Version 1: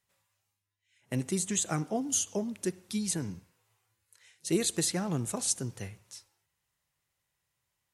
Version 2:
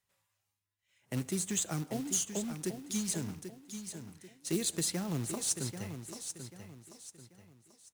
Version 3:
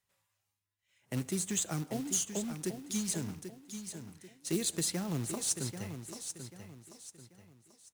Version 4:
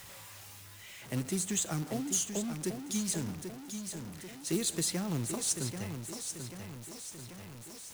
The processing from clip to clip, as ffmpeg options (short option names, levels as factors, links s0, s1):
-filter_complex "[0:a]acrusher=bits=3:mode=log:mix=0:aa=0.000001,acrossover=split=340|3000[s0][s1][s2];[s1]acompressor=threshold=0.0141:ratio=6[s3];[s0][s3][s2]amix=inputs=3:normalize=0,aecho=1:1:788|1576|2364|3152:0.355|0.128|0.046|0.0166,volume=0.708"
-af anull
-af "aeval=exprs='val(0)+0.5*0.00668*sgn(val(0))':c=same"